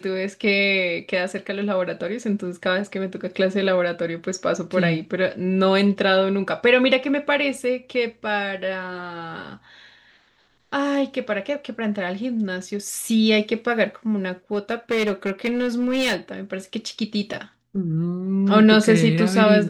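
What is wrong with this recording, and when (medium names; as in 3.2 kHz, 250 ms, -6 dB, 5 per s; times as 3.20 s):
14.53–16.16 s: clipped -17.5 dBFS
17.33 s: dropout 4.8 ms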